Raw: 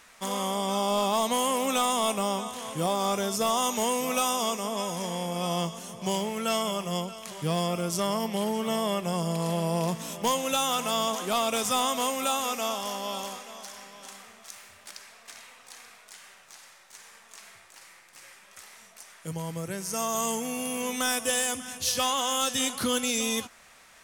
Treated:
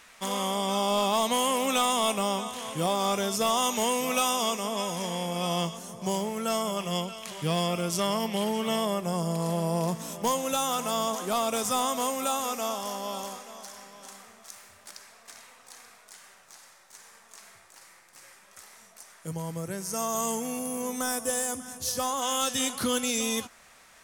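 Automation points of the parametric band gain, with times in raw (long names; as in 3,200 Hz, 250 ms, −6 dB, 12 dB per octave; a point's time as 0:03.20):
parametric band 2,800 Hz 1.2 octaves
+2.5 dB
from 0:05.77 −5.5 dB
from 0:06.77 +3.5 dB
from 0:08.85 −5.5 dB
from 0:20.59 −13.5 dB
from 0:22.22 −2 dB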